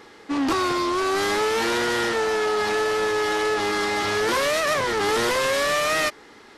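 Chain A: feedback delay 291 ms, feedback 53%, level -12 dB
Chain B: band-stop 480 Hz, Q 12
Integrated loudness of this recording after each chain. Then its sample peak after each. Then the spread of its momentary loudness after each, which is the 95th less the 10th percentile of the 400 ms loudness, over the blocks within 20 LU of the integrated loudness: -22.0 LUFS, -22.5 LUFS; -12.0 dBFS, -12.0 dBFS; 2 LU, 2 LU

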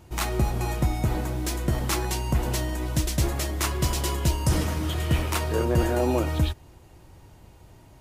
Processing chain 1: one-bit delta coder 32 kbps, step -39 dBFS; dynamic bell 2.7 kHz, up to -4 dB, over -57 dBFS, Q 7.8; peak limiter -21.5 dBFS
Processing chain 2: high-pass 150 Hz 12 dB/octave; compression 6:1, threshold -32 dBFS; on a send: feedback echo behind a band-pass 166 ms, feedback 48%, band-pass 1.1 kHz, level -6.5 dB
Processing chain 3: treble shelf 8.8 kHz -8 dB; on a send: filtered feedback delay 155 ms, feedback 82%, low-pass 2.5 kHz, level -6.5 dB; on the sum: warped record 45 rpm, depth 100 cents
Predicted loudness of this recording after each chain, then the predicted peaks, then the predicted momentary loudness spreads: -31.0 LUFS, -35.5 LUFS, -24.5 LUFS; -21.5 dBFS, -17.0 dBFS, -9.0 dBFS; 16 LU, 20 LU, 9 LU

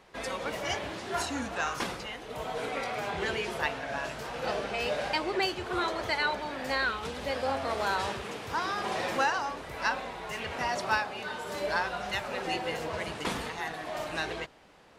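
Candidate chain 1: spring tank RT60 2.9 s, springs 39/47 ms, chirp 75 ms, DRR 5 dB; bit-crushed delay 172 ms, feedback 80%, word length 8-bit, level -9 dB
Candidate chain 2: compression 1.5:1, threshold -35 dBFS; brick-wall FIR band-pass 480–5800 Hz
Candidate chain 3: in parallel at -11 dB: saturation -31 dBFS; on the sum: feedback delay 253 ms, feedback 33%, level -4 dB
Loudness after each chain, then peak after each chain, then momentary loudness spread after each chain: -30.0 LUFS, -35.5 LUFS, -29.5 LUFS; -13.5 dBFS, -19.0 dBFS, -13.5 dBFS; 6 LU, 6 LU, 5 LU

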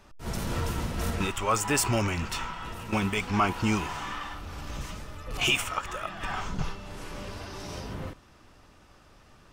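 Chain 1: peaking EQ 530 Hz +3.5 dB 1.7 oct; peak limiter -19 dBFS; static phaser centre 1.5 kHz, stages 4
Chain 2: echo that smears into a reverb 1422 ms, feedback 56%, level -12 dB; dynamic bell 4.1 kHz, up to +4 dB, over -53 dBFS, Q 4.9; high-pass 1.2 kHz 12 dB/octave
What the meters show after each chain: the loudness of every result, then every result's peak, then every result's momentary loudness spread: -34.5 LUFS, -33.0 LUFS; -19.5 dBFS, -12.5 dBFS; 11 LU, 19 LU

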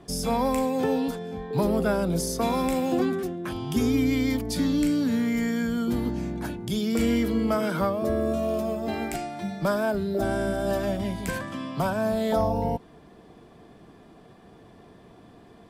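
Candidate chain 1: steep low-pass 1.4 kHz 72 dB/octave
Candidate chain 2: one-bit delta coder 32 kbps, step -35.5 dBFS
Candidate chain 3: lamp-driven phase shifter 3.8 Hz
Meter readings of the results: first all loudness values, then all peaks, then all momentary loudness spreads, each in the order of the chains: -26.5 LUFS, -26.5 LUFS, -29.0 LUFS; -13.0 dBFS, -13.5 dBFS, -14.5 dBFS; 8 LU, 18 LU, 8 LU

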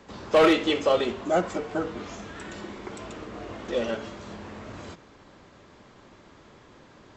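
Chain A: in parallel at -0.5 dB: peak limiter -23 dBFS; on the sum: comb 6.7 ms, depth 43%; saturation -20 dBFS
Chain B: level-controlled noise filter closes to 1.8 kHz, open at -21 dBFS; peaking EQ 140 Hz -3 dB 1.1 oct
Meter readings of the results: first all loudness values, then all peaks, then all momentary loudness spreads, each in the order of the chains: -28.5 LUFS, -25.0 LUFS; -20.0 dBFS, -11.0 dBFS; 22 LU, 21 LU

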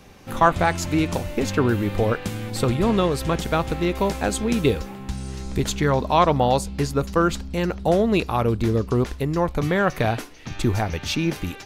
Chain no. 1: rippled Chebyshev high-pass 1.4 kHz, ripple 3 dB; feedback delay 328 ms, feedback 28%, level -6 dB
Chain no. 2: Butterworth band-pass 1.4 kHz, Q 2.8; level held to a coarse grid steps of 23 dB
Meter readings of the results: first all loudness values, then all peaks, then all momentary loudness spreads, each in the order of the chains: -33.0 LUFS, -41.5 LUFS; -13.5 dBFS, -13.5 dBFS; 10 LU, 18 LU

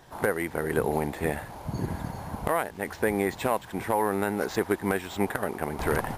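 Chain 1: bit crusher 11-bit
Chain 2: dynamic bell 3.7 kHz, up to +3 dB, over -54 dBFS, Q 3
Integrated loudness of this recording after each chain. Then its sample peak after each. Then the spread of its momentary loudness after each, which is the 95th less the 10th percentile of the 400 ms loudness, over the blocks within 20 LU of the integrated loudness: -29.0 LUFS, -29.0 LUFS; -12.5 dBFS, -12.0 dBFS; 7 LU, 7 LU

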